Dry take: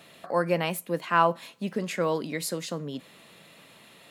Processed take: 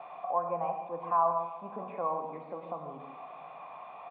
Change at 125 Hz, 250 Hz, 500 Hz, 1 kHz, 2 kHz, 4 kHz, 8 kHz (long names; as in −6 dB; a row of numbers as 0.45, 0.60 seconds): −15.0 dB, −15.0 dB, −6.5 dB, −1.5 dB, −21.0 dB, below −25 dB, below −40 dB